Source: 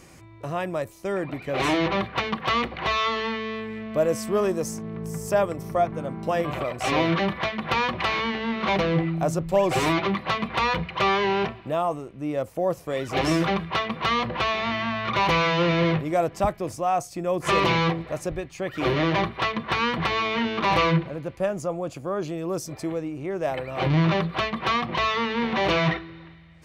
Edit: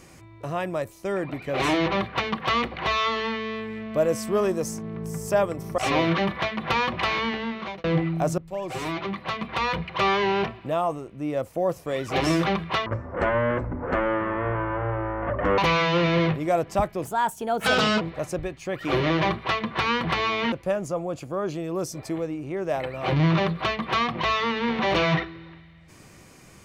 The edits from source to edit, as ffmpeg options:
-filter_complex "[0:a]asplit=9[a][b][c][d][e][f][g][h][i];[a]atrim=end=5.782[j];[b]atrim=start=6.788:end=8.85,asetpts=PTS-STARTPTS,afade=t=out:st=1.562:d=0.5[k];[c]atrim=start=8.85:end=9.39,asetpts=PTS-STARTPTS,afade=t=in:d=0.004:c=hsin,afade=t=out:st=0.536:d=0.004:c=hsin:silence=0.199526[l];[d]atrim=start=9.39:end=13.874,asetpts=PTS-STARTPTS,afade=t=in:d=1.78:silence=0.199526[m];[e]atrim=start=13.87:end=15.23,asetpts=PTS-STARTPTS,asetrate=22050,aresample=44100[n];[f]atrim=start=15.226:end=16.704[o];[g]atrim=start=16.7:end=17.94,asetpts=PTS-STARTPTS,asetrate=56889,aresample=44100[p];[h]atrim=start=17.936:end=20.452[q];[i]atrim=start=21.258[r];[k][l][m]concat=n=3:v=0:a=1[s];[j][s]acrossfade=d=0.004:c1=hsin:c2=hsin[t];[t][n]acrossfade=d=0.004:c1=hsin:c2=hsin[u];[u][o]acrossfade=d=0.004:c1=hsin:c2=hsin[v];[v][p]acrossfade=d=0.004:c1=hsin:c2=hsin[w];[w][q]acrossfade=d=0.004:c1=hsin:c2=hsin[x];[x][r]acrossfade=d=0.004:c1=hsin:c2=hsin"

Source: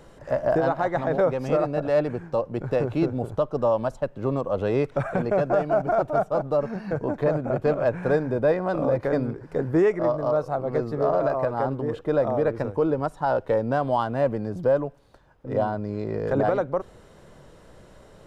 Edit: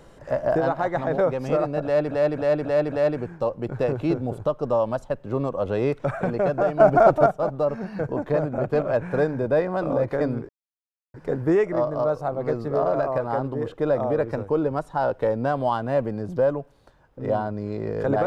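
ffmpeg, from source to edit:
-filter_complex "[0:a]asplit=8[a][b][c][d][e][f][g][h];[a]atrim=end=2.112[i];[b]atrim=start=1.838:end=2.112[j];[c]atrim=start=1.838:end=2.112[k];[d]atrim=start=1.838:end=2.112[l];[e]atrim=start=1.838:end=5.722[m];[f]atrim=start=5.718:end=6.182,asetpts=PTS-STARTPTS,volume=7.5dB[n];[g]atrim=start=6.178:end=9.41,asetpts=PTS-STARTPTS,afade=t=out:st=3.228:d=0.004:c=hsin,apad=pad_dur=0.65[o];[h]atrim=start=9.41,asetpts=PTS-STARTPTS,afade=t=in:d=0.004:c=hsin[p];[i][j]acrossfade=d=0.004:c1=hsin:c2=hsin[q];[q][k]acrossfade=d=0.004:c1=hsin:c2=hsin[r];[r][l]acrossfade=d=0.004:c1=hsin:c2=hsin[s];[s][m]acrossfade=d=0.004:c1=hsin:c2=hsin[t];[t][n]acrossfade=d=0.004:c1=hsin:c2=hsin[u];[o][p]concat=n=2:v=0:a=1[v];[u][v]acrossfade=d=0.004:c1=hsin:c2=hsin"

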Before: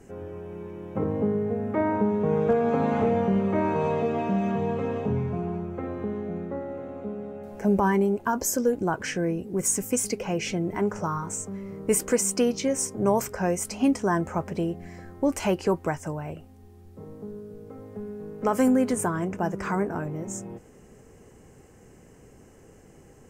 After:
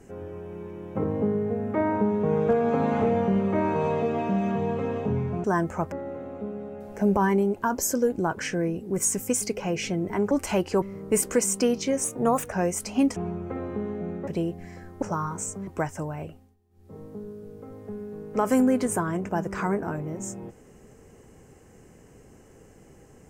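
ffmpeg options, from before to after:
-filter_complex "[0:a]asplit=13[a][b][c][d][e][f][g][h][i][j][k][l][m];[a]atrim=end=5.442[n];[b]atrim=start=14.008:end=14.492[o];[c]atrim=start=6.548:end=10.942[p];[d]atrim=start=15.238:end=15.752[q];[e]atrim=start=11.588:end=12.814[r];[f]atrim=start=12.81:end=13.37,asetpts=PTS-STARTPTS,asetrate=51156,aresample=44100[s];[g]atrim=start=13.366:end=14.012[t];[h]atrim=start=5.438:end=6.552[u];[i]atrim=start=14.488:end=15.242[v];[j]atrim=start=10.938:end=11.592[w];[k]atrim=start=15.748:end=16.64,asetpts=PTS-STARTPTS,afade=t=out:st=0.612:d=0.28:silence=0.11885[x];[l]atrim=start=16.64:end=16.78,asetpts=PTS-STARTPTS,volume=-18.5dB[y];[m]atrim=start=16.78,asetpts=PTS-STARTPTS,afade=t=in:d=0.28:silence=0.11885[z];[n][o]acrossfade=d=0.004:c1=hsin:c2=hsin[aa];[aa][p]acrossfade=d=0.004:c1=hsin:c2=hsin[ab];[ab][q]acrossfade=d=0.004:c1=hsin:c2=hsin[ac];[ac][r]acrossfade=d=0.004:c1=hsin:c2=hsin[ad];[ad][s]acrossfade=d=0.004:c1=hsin:c2=hsin[ae];[ae][t]acrossfade=d=0.004:c1=hsin:c2=hsin[af];[af][u]acrossfade=d=0.004:c1=hsin:c2=hsin[ag];[ag][v]acrossfade=d=0.004:c1=hsin:c2=hsin[ah];[ah][w]acrossfade=d=0.004:c1=hsin:c2=hsin[ai];[x][y][z]concat=n=3:v=0:a=1[aj];[ai][aj]acrossfade=d=0.004:c1=hsin:c2=hsin"

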